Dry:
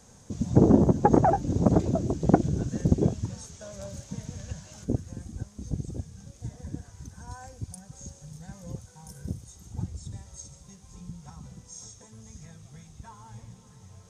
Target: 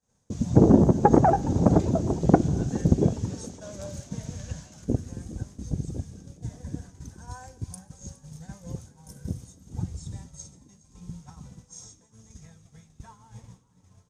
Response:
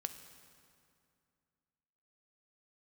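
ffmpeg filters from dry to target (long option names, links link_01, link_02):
-filter_complex "[0:a]agate=range=-33dB:threshold=-40dB:ratio=3:detection=peak,asplit=4[link_01][link_02][link_03][link_04];[link_02]adelay=414,afreqshift=69,volume=-20.5dB[link_05];[link_03]adelay=828,afreqshift=138,volume=-29.1dB[link_06];[link_04]adelay=1242,afreqshift=207,volume=-37.8dB[link_07];[link_01][link_05][link_06][link_07]amix=inputs=4:normalize=0,asplit=2[link_08][link_09];[1:a]atrim=start_sample=2205[link_10];[link_09][link_10]afir=irnorm=-1:irlink=0,volume=-6dB[link_11];[link_08][link_11]amix=inputs=2:normalize=0,volume=-1dB"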